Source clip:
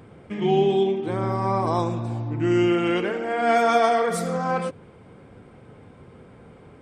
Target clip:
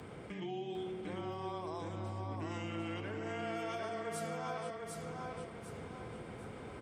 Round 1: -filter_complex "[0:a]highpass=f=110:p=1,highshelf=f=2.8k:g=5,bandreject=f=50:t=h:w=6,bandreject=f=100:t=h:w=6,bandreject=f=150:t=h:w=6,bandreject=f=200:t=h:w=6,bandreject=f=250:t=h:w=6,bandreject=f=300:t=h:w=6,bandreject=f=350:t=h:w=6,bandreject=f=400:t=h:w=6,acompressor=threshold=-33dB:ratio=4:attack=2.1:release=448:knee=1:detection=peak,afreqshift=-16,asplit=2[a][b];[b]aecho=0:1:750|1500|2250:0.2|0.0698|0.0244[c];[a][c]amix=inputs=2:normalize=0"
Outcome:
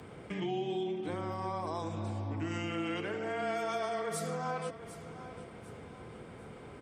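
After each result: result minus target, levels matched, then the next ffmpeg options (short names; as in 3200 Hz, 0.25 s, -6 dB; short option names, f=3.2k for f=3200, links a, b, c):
echo-to-direct -11 dB; compressor: peak gain reduction -6.5 dB
-filter_complex "[0:a]highpass=f=110:p=1,highshelf=f=2.8k:g=5,bandreject=f=50:t=h:w=6,bandreject=f=100:t=h:w=6,bandreject=f=150:t=h:w=6,bandreject=f=200:t=h:w=6,bandreject=f=250:t=h:w=6,bandreject=f=300:t=h:w=6,bandreject=f=350:t=h:w=6,bandreject=f=400:t=h:w=6,acompressor=threshold=-33dB:ratio=4:attack=2.1:release=448:knee=1:detection=peak,afreqshift=-16,asplit=2[a][b];[b]aecho=0:1:750|1500|2250|3000|3750:0.708|0.248|0.0867|0.0304|0.0106[c];[a][c]amix=inputs=2:normalize=0"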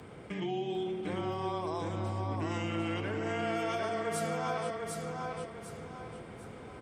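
compressor: peak gain reduction -6.5 dB
-filter_complex "[0:a]highpass=f=110:p=1,highshelf=f=2.8k:g=5,bandreject=f=50:t=h:w=6,bandreject=f=100:t=h:w=6,bandreject=f=150:t=h:w=6,bandreject=f=200:t=h:w=6,bandreject=f=250:t=h:w=6,bandreject=f=300:t=h:w=6,bandreject=f=350:t=h:w=6,bandreject=f=400:t=h:w=6,acompressor=threshold=-41.5dB:ratio=4:attack=2.1:release=448:knee=1:detection=peak,afreqshift=-16,asplit=2[a][b];[b]aecho=0:1:750|1500|2250|3000|3750:0.708|0.248|0.0867|0.0304|0.0106[c];[a][c]amix=inputs=2:normalize=0"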